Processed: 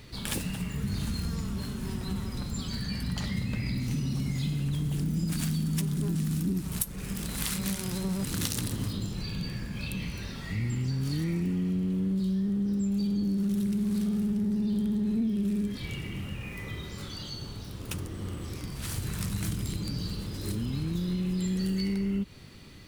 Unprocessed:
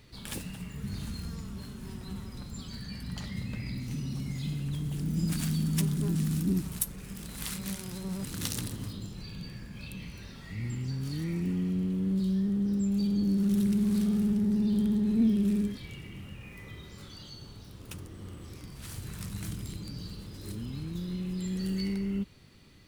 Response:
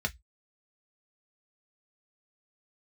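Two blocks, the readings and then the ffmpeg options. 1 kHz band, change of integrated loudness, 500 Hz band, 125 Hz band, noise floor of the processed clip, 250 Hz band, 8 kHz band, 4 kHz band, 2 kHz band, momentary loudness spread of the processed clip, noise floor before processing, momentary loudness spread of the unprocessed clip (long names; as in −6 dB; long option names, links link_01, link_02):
+5.0 dB, +0.5 dB, +1.5 dB, +2.5 dB, −40 dBFS, 0.0 dB, +3.0 dB, +4.5 dB, +5.0 dB, 9 LU, −47 dBFS, 18 LU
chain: -af "acompressor=threshold=-34dB:ratio=6,volume=7.5dB"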